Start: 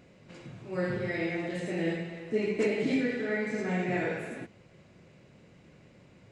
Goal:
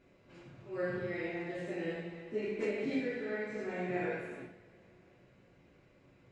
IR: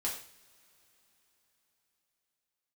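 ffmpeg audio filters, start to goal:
-filter_complex "[0:a]lowpass=frequency=3500:poles=1[link_01];[1:a]atrim=start_sample=2205,asetrate=57330,aresample=44100[link_02];[link_01][link_02]afir=irnorm=-1:irlink=0,volume=-5.5dB"

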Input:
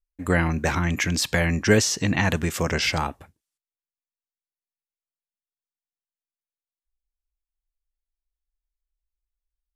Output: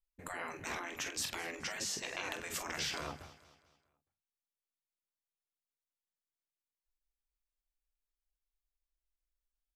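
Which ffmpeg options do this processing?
ffmpeg -i in.wav -filter_complex "[0:a]bandreject=frequency=50:width_type=h:width=6,bandreject=frequency=100:width_type=h:width=6,bandreject=frequency=150:width_type=h:width=6,bandreject=frequency=200:width_type=h:width=6,bandreject=frequency=250:width_type=h:width=6,asplit=2[link_01][link_02];[link_02]aecho=0:1:22|46:0.266|0.335[link_03];[link_01][link_03]amix=inputs=2:normalize=0,acompressor=threshold=-24dB:ratio=5,afftfilt=real='re*lt(hypot(re,im),0.1)':imag='im*lt(hypot(re,im),0.1)':win_size=1024:overlap=0.75,asplit=2[link_04][link_05];[link_05]aecho=0:1:215|430|645|860:0.133|0.0573|0.0247|0.0106[link_06];[link_04][link_06]amix=inputs=2:normalize=0,volume=-6dB" out.wav

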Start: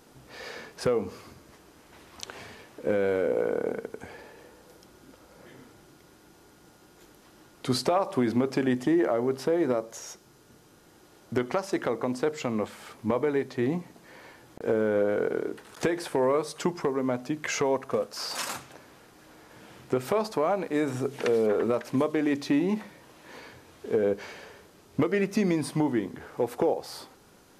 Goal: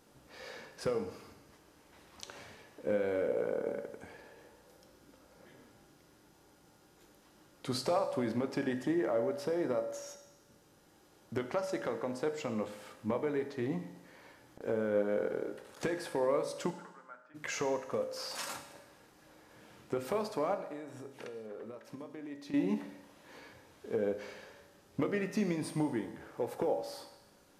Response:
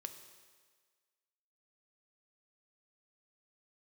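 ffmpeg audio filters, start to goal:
-filter_complex "[0:a]asplit=3[link_01][link_02][link_03];[link_01]afade=type=out:start_time=16.7:duration=0.02[link_04];[link_02]bandpass=frequency=1400:width_type=q:width=6.7:csg=0,afade=type=in:start_time=16.7:duration=0.02,afade=type=out:start_time=17.34:duration=0.02[link_05];[link_03]afade=type=in:start_time=17.34:duration=0.02[link_06];[link_04][link_05][link_06]amix=inputs=3:normalize=0,asettb=1/sr,asplit=3[link_07][link_08][link_09];[link_07]atrim=end=20.544[link_10];[link_08]atrim=start=20.54:end=22.54,asetpts=PTS-STARTPTS,afade=type=in:duration=0.004:curve=qsin,afade=type=out:start_time=1.996:duration=0.004:curve=qsin,acompressor=threshold=-35dB:ratio=10[link_11];[link_09]atrim=start=22.536[link_12];[link_10][link_11]acrossfade=duration=0.004:curve1=hsin:curve2=qsin[link_13];[link_13][link_12]acrossfade=duration=0.004:curve1=qsin:curve2=hsin[link_14];[1:a]atrim=start_sample=2205,asetrate=66150,aresample=44100[link_15];[link_14][link_15]afir=irnorm=-1:irlink=0"

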